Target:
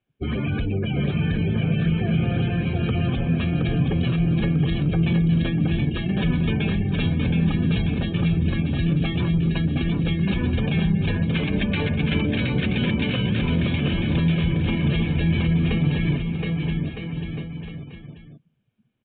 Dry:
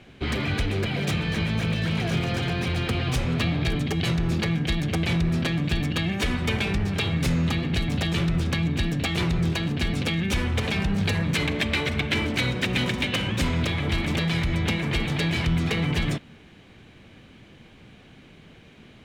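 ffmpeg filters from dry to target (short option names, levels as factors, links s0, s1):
-filter_complex "[0:a]bandreject=f=2000:w=9.2,afftdn=nr=33:nf=-30,adynamicequalizer=threshold=0.0141:dfrequency=170:dqfactor=1:tfrequency=170:tqfactor=1:attack=5:release=100:ratio=0.375:range=3:mode=boostabove:tftype=bell,alimiter=limit=0.119:level=0:latency=1,asplit=2[s0][s1];[s1]aecho=0:1:720|1260|1665|1969|2197:0.631|0.398|0.251|0.158|0.1[s2];[s0][s2]amix=inputs=2:normalize=0,aresample=8000,aresample=44100,volume=1.19"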